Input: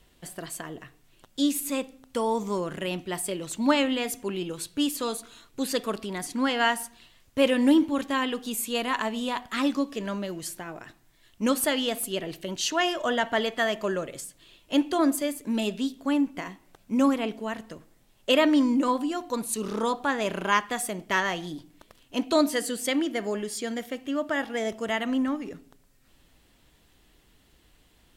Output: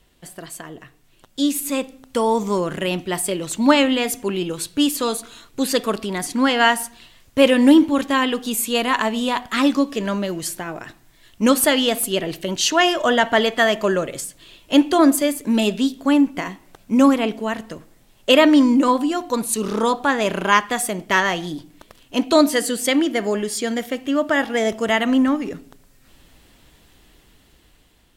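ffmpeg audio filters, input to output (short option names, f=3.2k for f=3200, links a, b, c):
-af "dynaudnorm=f=680:g=5:m=8dB,volume=1.5dB"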